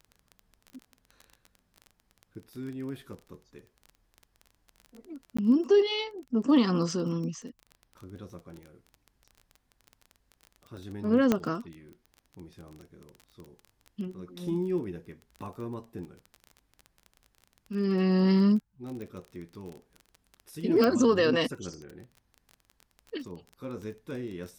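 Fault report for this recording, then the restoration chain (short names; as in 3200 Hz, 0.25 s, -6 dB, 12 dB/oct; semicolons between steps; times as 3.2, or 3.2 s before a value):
crackle 20/s -37 dBFS
5.37–5.38 gap 15 ms
11.32 pop -11 dBFS
19.02 pop -30 dBFS
20.84 pop -14 dBFS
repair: de-click; interpolate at 5.37, 15 ms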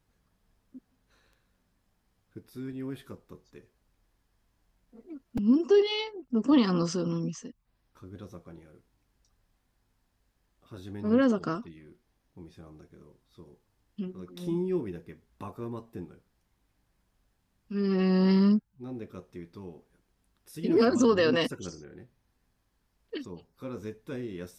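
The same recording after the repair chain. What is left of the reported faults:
19.02 pop
20.84 pop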